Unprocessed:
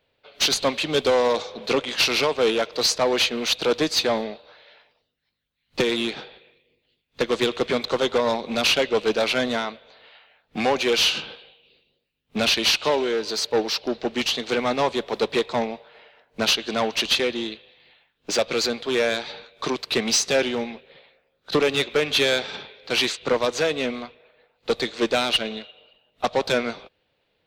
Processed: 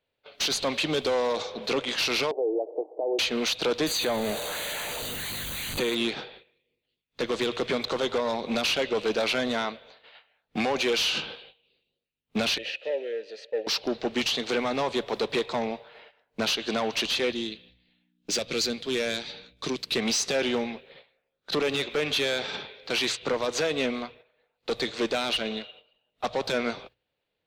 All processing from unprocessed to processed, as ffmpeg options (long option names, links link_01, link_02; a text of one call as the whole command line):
ffmpeg -i in.wav -filter_complex "[0:a]asettb=1/sr,asplit=3[link_01][link_02][link_03];[link_01]atrim=end=2.314[link_04];[link_02]atrim=start=2.31:end=3.19,asetpts=PTS-STARTPTS,afade=type=in:duration=0.004:curve=qsin,afade=type=out:start_time=0.876:duration=0.004:curve=qsin,acompressor=threshold=-25dB:ratio=12:attack=3.2:release=140:knee=1:detection=peak,asuperpass=centerf=510:order=12:qfactor=0.98,aemphasis=mode=reproduction:type=riaa[link_05];[link_03]atrim=start=3.186[link_06];[link_04][link_05]acrossfade=duration=0.004:curve1=hsin:curve2=qsin[link_07];[link_07][link_06]acrossfade=duration=0.004:curve1=qsin:curve2=hsin,asettb=1/sr,asplit=3[link_08][link_09][link_10];[link_08]atrim=end=3.864[link_11];[link_09]atrim=start=3.86:end=5.95,asetpts=PTS-STARTPTS,afade=type=in:duration=0.004:curve=qsin,afade=type=out:start_time=2.086:duration=0.004:curve=qsin,aeval=exprs='val(0)+0.5*0.0376*sgn(val(0))':channel_layout=same,asuperstop=centerf=5300:order=12:qfactor=4.8,equalizer=frequency=13000:width_type=o:width=1.4:gain=5[link_12];[link_10]atrim=start=5.946[link_13];[link_11][link_12]acrossfade=duration=0.004:curve1=hsin:curve2=qsin[link_14];[link_14][link_13]acrossfade=duration=0.004:curve1=qsin:curve2=hsin,asettb=1/sr,asplit=3[link_15][link_16][link_17];[link_15]atrim=end=12.584[link_18];[link_16]atrim=start=12.58:end=13.67,asetpts=PTS-STARTPTS,afade=type=in:duration=0.004:curve=qsin,afade=type=out:start_time=1.086:duration=0.004:curve=qsin,asplit=3[link_19][link_20][link_21];[link_19]bandpass=frequency=530:width_type=q:width=8,volume=0dB[link_22];[link_20]bandpass=frequency=1840:width_type=q:width=8,volume=-6dB[link_23];[link_21]bandpass=frequency=2480:width_type=q:width=8,volume=-9dB[link_24];[link_22][link_23][link_24]amix=inputs=3:normalize=0,bandreject=frequency=1500:width=16[link_25];[link_17]atrim=start=13.666[link_26];[link_18][link_25]acrossfade=duration=0.004:curve1=hsin:curve2=qsin[link_27];[link_27][link_26]acrossfade=duration=0.004:curve1=qsin:curve2=hsin,asettb=1/sr,asplit=3[link_28][link_29][link_30];[link_28]atrim=end=17.324[link_31];[link_29]atrim=start=17.32:end=19.96,asetpts=PTS-STARTPTS,afade=type=in:duration=0.004:curve=qsin,afade=type=out:start_time=2.636:duration=0.004:curve=qsin,equalizer=frequency=920:width_type=o:width=2.3:gain=-10.5,aeval=exprs='val(0)+0.00251*(sin(2*PI*60*n/s)+sin(2*PI*2*60*n/s)/2+sin(2*PI*3*60*n/s)/3+sin(2*PI*4*60*n/s)/4+sin(2*PI*5*60*n/s)/5)':channel_layout=same[link_32];[link_30]atrim=start=19.956[link_33];[link_31][link_32]acrossfade=duration=0.004:curve1=hsin:curve2=qsin[link_34];[link_34][link_33]acrossfade=duration=0.004:curve1=qsin:curve2=hsin,agate=range=-11dB:threshold=-50dB:ratio=16:detection=peak,bandreject=frequency=60:width_type=h:width=6,bandreject=frequency=120:width_type=h:width=6,alimiter=limit=-19.5dB:level=0:latency=1:release=31" out.wav